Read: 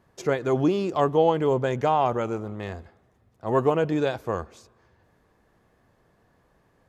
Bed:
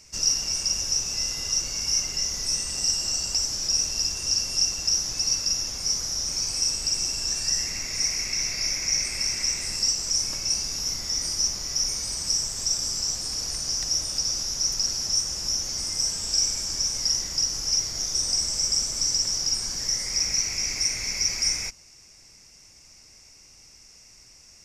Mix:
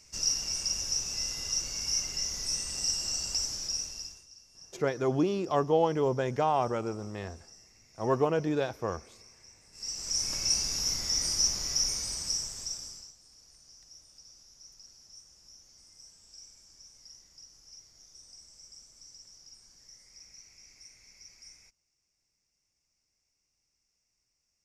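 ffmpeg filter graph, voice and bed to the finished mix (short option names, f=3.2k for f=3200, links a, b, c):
-filter_complex "[0:a]adelay=4550,volume=-5dB[a];[1:a]volume=22dB,afade=t=out:st=3.43:d=0.84:silence=0.0630957,afade=t=in:st=9.72:d=0.71:silence=0.0398107,afade=t=out:st=11.65:d=1.48:silence=0.0501187[b];[a][b]amix=inputs=2:normalize=0"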